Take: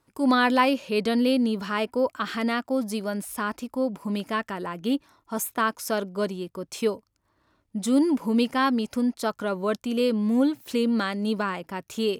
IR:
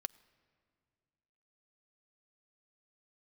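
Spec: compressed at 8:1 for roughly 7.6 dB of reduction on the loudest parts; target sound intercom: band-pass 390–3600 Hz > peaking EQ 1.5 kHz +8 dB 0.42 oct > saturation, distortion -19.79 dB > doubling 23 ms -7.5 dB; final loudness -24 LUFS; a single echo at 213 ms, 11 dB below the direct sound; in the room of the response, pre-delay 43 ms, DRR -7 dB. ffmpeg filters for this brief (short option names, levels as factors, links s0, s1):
-filter_complex "[0:a]acompressor=threshold=0.0631:ratio=8,aecho=1:1:213:0.282,asplit=2[s0][s1];[1:a]atrim=start_sample=2205,adelay=43[s2];[s1][s2]afir=irnorm=-1:irlink=0,volume=2.99[s3];[s0][s3]amix=inputs=2:normalize=0,highpass=390,lowpass=3600,equalizer=f=1500:t=o:w=0.42:g=8,asoftclip=threshold=0.299,asplit=2[s4][s5];[s5]adelay=23,volume=0.422[s6];[s4][s6]amix=inputs=2:normalize=0,volume=0.944"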